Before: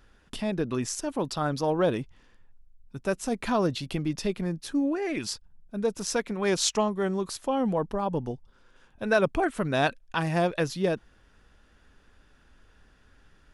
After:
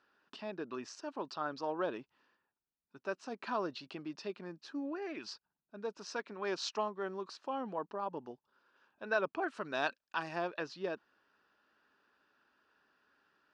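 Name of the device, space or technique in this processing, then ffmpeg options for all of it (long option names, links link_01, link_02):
phone earpiece: -filter_complex "[0:a]asettb=1/sr,asplit=3[link_01][link_02][link_03];[link_01]atrim=end=9.474[link_04];[link_02]atrim=start=9.47:end=10.36,asetpts=PTS-STARTPTS,afade=type=in:duration=0.004:curve=qsin,afade=type=out:start_time=0.886:duration=0.004:curve=qsin,aemphasis=mode=production:type=50fm[link_05];[link_03]atrim=start=10.356[link_06];[link_04][link_05]acrossfade=duration=0.004:curve1=hsin:curve2=qsin[link_07];[link_07][link_06]acrossfade=duration=0.004:curve1=qsin:curve2=hsin,highpass=440,equalizer=frequency=500:width_type=q:width=4:gain=-7,equalizer=frequency=730:width_type=q:width=4:gain=-5,equalizer=frequency=2100:width_type=q:width=4:gain=-10,equalizer=frequency=3400:width_type=q:width=4:gain=-9,lowpass=frequency=4500:width=0.5412,lowpass=frequency=4500:width=1.3066,volume=-5dB"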